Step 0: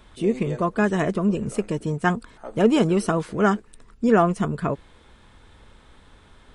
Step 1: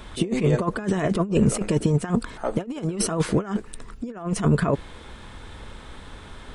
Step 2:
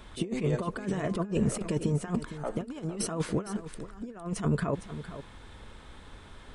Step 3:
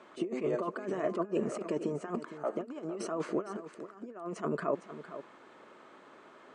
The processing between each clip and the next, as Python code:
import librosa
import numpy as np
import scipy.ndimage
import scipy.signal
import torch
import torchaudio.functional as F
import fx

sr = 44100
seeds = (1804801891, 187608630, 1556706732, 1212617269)

y1 = fx.over_compress(x, sr, threshold_db=-26.0, ratio=-0.5)
y1 = F.gain(torch.from_numpy(y1), 4.5).numpy()
y2 = y1 + 10.0 ** (-12.5 / 20.0) * np.pad(y1, (int(459 * sr / 1000.0), 0))[:len(y1)]
y2 = F.gain(torch.from_numpy(y2), -8.0).numpy()
y3 = fx.cabinet(y2, sr, low_hz=200.0, low_slope=24, high_hz=6900.0, hz=(200.0, 360.0, 620.0, 1200.0, 3600.0, 5300.0), db=(-4, 7, 8, 7, -10, -6))
y3 = F.gain(torch.from_numpy(y3), -4.5).numpy()